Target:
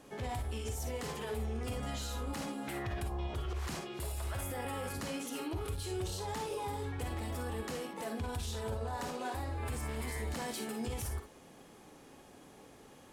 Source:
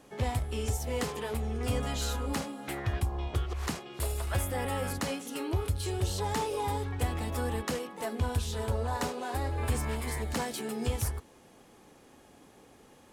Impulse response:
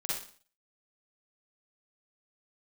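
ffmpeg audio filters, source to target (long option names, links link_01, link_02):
-filter_complex "[0:a]alimiter=level_in=7dB:limit=-24dB:level=0:latency=1:release=29,volume=-7dB,asplit=2[link_01][link_02];[1:a]atrim=start_sample=2205,atrim=end_sample=3528[link_03];[link_02][link_03]afir=irnorm=-1:irlink=0,volume=-5dB[link_04];[link_01][link_04]amix=inputs=2:normalize=0,volume=-3dB"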